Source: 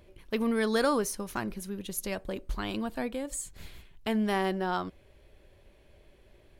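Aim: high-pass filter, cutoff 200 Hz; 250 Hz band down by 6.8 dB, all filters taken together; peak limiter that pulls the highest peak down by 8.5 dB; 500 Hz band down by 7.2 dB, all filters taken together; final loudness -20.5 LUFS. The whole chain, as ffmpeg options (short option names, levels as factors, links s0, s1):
-af "highpass=200,equalizer=f=250:t=o:g=-4,equalizer=f=500:t=o:g=-7.5,volume=7.94,alimiter=limit=0.355:level=0:latency=1"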